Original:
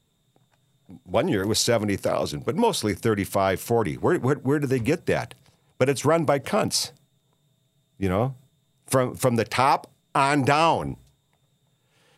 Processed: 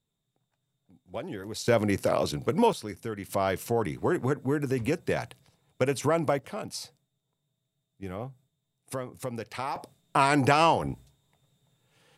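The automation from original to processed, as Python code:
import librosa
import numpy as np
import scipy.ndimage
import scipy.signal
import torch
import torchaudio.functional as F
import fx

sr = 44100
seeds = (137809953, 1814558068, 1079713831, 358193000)

y = fx.gain(x, sr, db=fx.steps((0.0, -14.0), (1.68, -1.5), (2.73, -12.5), (3.29, -5.0), (6.39, -13.5), (9.76, -2.0)))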